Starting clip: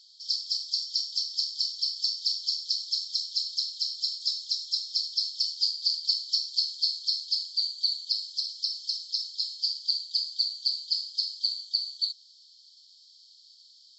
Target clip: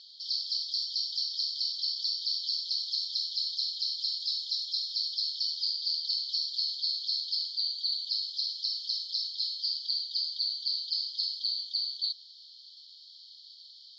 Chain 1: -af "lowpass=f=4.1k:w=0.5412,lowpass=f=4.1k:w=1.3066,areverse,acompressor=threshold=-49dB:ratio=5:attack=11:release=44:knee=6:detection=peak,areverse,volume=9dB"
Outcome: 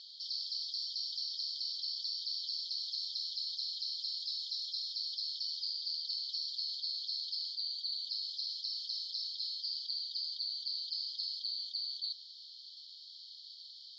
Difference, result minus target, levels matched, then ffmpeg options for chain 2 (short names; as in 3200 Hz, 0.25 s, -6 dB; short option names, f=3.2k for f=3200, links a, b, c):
compressor: peak gain reduction +7.5 dB
-af "lowpass=f=4.1k:w=0.5412,lowpass=f=4.1k:w=1.3066,areverse,acompressor=threshold=-39.5dB:ratio=5:attack=11:release=44:knee=6:detection=peak,areverse,volume=9dB"